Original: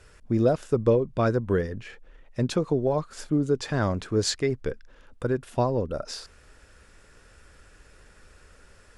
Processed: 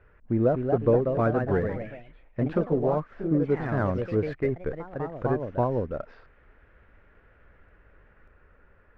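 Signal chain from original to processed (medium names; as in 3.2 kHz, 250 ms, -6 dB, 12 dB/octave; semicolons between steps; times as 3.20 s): low-pass 2.1 kHz 24 dB/octave; in parallel at -8 dB: hysteresis with a dead band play -33 dBFS; on the sum: ever faster or slower copies 284 ms, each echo +2 st, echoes 3, each echo -6 dB; trim -4 dB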